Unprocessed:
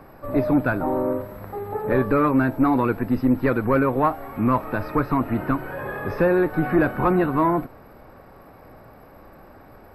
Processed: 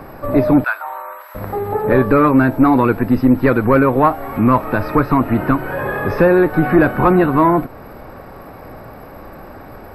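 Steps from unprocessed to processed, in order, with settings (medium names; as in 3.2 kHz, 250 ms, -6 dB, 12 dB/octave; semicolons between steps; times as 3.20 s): in parallel at -2 dB: compression, threshold -32 dBFS, peak gain reduction 16.5 dB; 0.64–1.35 s: on the sum: high-pass 980 Hz 24 dB/octave; trim +6 dB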